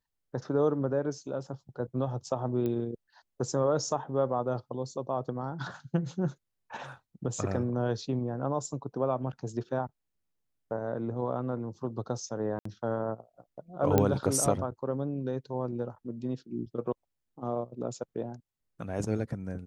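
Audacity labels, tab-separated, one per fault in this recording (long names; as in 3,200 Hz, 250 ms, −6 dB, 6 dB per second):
2.660000	2.660000	click −22 dBFS
12.590000	12.650000	drop-out 64 ms
13.980000	13.980000	click −10 dBFS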